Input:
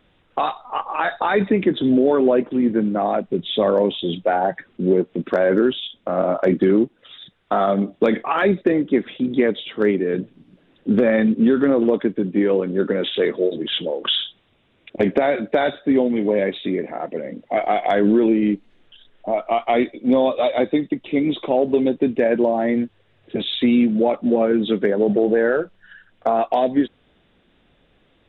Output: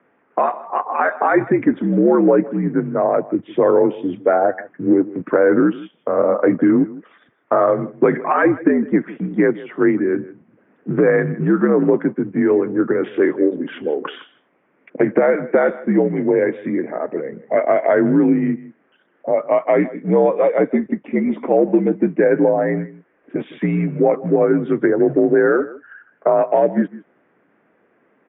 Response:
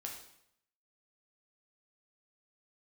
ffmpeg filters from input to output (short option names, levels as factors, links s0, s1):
-af "aecho=1:1:159:0.119,highpass=f=300:t=q:w=0.5412,highpass=f=300:t=q:w=1.307,lowpass=f=2100:t=q:w=0.5176,lowpass=f=2100:t=q:w=0.7071,lowpass=f=2100:t=q:w=1.932,afreqshift=-67,volume=1.58"